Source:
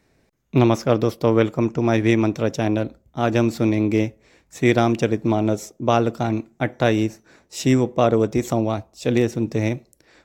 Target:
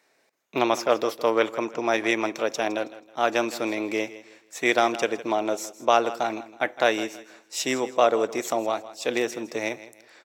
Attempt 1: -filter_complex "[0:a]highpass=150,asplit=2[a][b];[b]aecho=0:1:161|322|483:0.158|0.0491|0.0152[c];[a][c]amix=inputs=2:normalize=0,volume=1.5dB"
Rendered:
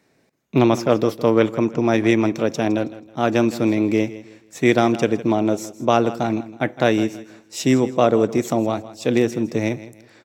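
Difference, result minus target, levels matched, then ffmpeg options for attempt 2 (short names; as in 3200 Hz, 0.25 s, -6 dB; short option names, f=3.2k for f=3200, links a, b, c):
125 Hz band +15.5 dB
-filter_complex "[0:a]highpass=580,asplit=2[a][b];[b]aecho=0:1:161|322|483:0.158|0.0491|0.0152[c];[a][c]amix=inputs=2:normalize=0,volume=1.5dB"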